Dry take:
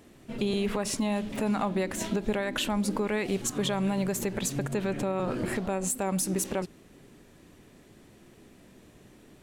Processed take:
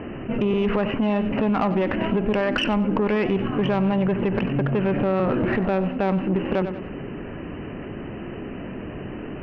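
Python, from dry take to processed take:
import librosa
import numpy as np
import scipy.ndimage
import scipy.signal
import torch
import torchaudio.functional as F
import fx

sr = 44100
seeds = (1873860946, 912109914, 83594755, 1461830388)

p1 = scipy.signal.sosfilt(scipy.signal.cheby1(10, 1.0, 3000.0, 'lowpass', fs=sr, output='sos'), x)
p2 = fx.peak_eq(p1, sr, hz=2200.0, db=-4.5, octaves=0.45)
p3 = fx.tube_stage(p2, sr, drive_db=24.0, bias=0.3)
p4 = p3 + fx.echo_feedback(p3, sr, ms=94, feedback_pct=24, wet_db=-15.0, dry=0)
p5 = fx.env_flatten(p4, sr, amount_pct=50)
y = p5 * 10.0 ** (8.5 / 20.0)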